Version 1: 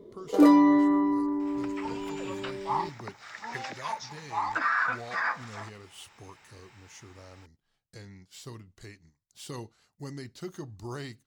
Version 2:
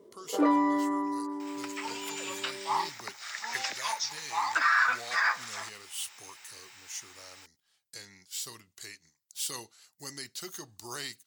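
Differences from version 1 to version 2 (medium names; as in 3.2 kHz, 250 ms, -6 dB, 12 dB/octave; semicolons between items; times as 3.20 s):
first sound: add low-pass 1.4 kHz 12 dB/octave; master: add tilt EQ +4.5 dB/octave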